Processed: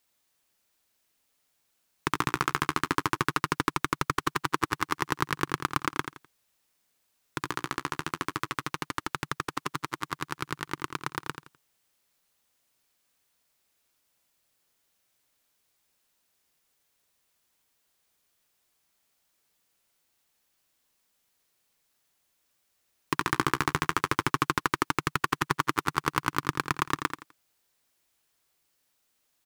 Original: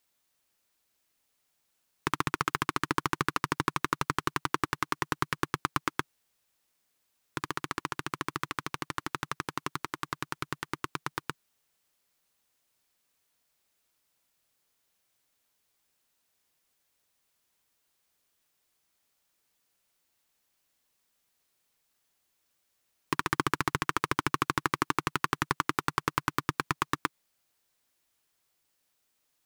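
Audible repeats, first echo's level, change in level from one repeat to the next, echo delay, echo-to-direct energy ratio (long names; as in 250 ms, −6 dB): 3, −8.5 dB, −11.5 dB, 84 ms, −8.0 dB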